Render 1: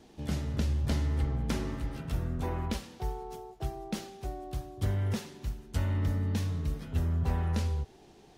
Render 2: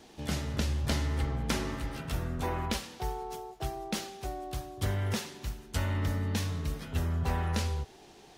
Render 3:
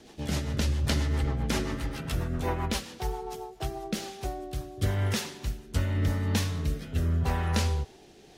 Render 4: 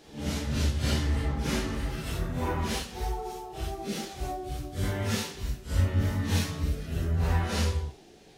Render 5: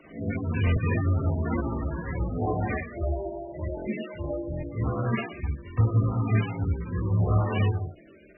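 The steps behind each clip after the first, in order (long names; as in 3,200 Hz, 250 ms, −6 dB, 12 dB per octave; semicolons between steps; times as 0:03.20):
low-shelf EQ 500 Hz −8.5 dB; level +6.5 dB
rotating-speaker cabinet horn 7.5 Hz, later 0.85 Hz, at 0:03.31; level +5 dB
random phases in long frames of 200 ms
partials spread apart or drawn together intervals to 80%; buffer that repeats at 0:00.65/0:03.75/0:04.51/0:05.66, samples 1,024, times 4; level +4.5 dB; MP3 8 kbit/s 24,000 Hz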